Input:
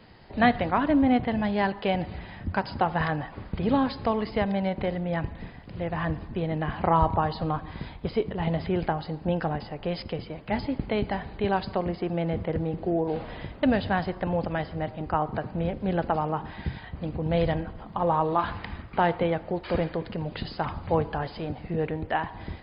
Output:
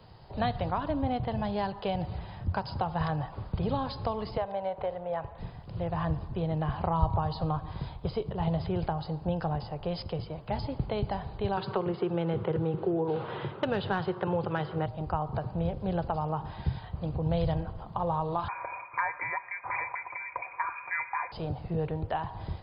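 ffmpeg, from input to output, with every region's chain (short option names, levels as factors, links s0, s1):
-filter_complex "[0:a]asettb=1/sr,asplit=3[s0][s1][s2];[s0]atrim=end=4.374[s3];[s1]atrim=start=4.37:end=5.38,asetpts=PTS-STARTPTS,afade=t=in:d=0.004:c=qsin,afade=t=out:st=1.006:d=0.004:c=qsin,lowpass=2500,lowshelf=f=370:t=q:w=1.5:g=-11.5[s4];[s2]atrim=start=5.376[s5];[s3][s4]acrossfade=d=0.004:c1=hsin:c2=qsin[s6];[s6][s5]acrossfade=d=0.004:c1=qsin:c2=hsin,asettb=1/sr,asplit=3[s7][s8][s9];[s7]atrim=end=11.574[s10];[s8]atrim=start=11.57:end=14.86,asetpts=PTS-STARTPTS,afade=t=in:d=0.004:c=qsin,afade=t=out:st=3.286:d=0.004:c=qsin,highpass=f=140:w=0.5412,highpass=f=140:w=1.3066,equalizer=f=170:t=q:w=4:g=-5,equalizer=f=260:t=q:w=4:g=-7,equalizer=f=380:t=q:w=4:g=8,equalizer=f=670:t=q:w=4:g=-9,equalizer=f=1400:t=q:w=4:g=6,lowpass=f=3500:w=0.5412,lowpass=f=3500:w=1.3066,acontrast=78[s11];[s9]atrim=start=14.856[s12];[s10][s11]acrossfade=d=0.004:c1=hsin:c2=qsin[s13];[s13][s12]acrossfade=d=0.004:c1=qsin:c2=hsin,asettb=1/sr,asplit=3[s14][s15][s16];[s14]atrim=end=18.484[s17];[s15]atrim=start=18.48:end=21.32,asetpts=PTS-STARTPTS,afade=t=in:d=0.004:c=qsin,afade=t=out:st=2.836:d=0.004:c=qsin,equalizer=f=1500:t=o:w=0.23:g=14.5,aecho=1:1:4.6:0.48,atrim=end_sample=125244,lowpass=f=2100:t=q:w=0.5098,lowpass=f=2100:t=q:w=0.6013,lowpass=f=2100:t=q:w=0.9,lowpass=f=2100:t=q:w=2.563,afreqshift=-2500[s18];[s16]atrim=start=21.316[s19];[s17][s18]acrossfade=d=0.004:c1=hsin:c2=qsin[s20];[s20][s19]acrossfade=d=0.004:c1=qsin:c2=hsin,equalizer=f=125:t=o:w=1:g=6,equalizer=f=250:t=o:w=1:g=-10,equalizer=f=1000:t=o:w=1:g=3,equalizer=f=2000:t=o:w=1:g=-11,acrossover=split=160|3000[s21][s22][s23];[s22]acompressor=threshold=0.0355:ratio=3[s24];[s21][s24][s23]amix=inputs=3:normalize=0"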